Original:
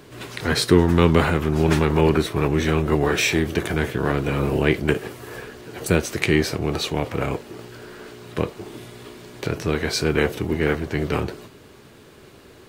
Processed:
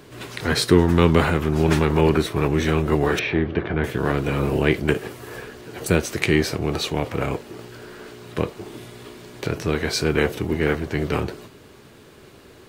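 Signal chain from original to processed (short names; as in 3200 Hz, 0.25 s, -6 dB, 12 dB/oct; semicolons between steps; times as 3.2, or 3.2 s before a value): 3.19–3.84 Gaussian blur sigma 2.9 samples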